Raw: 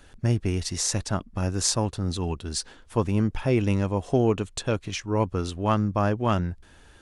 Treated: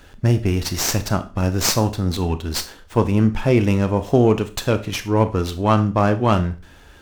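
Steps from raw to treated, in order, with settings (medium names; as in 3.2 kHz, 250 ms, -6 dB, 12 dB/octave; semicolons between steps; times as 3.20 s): Schroeder reverb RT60 0.34 s, combs from 25 ms, DRR 10 dB; sliding maximum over 3 samples; trim +6.5 dB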